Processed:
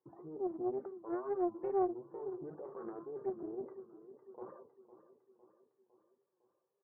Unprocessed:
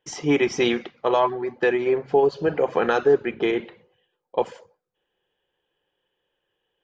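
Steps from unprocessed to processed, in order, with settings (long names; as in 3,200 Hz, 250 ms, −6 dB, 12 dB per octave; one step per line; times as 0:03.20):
Butterworth low-pass 1,300 Hz 36 dB per octave
gate on every frequency bin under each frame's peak −30 dB strong
high-pass filter 110 Hz 24 dB per octave
reversed playback
downward compressor 6 to 1, threshold −28 dBFS, peak gain reduction 14 dB
reversed playback
brickwall limiter −30 dBFS, peak gain reduction 12.5 dB
tuned comb filter 370 Hz, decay 0.3 s, harmonics odd, mix 90%
flanger 2 Hz, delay 6.6 ms, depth 2.5 ms, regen −86%
tape wow and flutter 150 cents
repeating echo 506 ms, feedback 54%, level −14 dB
highs frequency-modulated by the lows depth 0.46 ms
level +13 dB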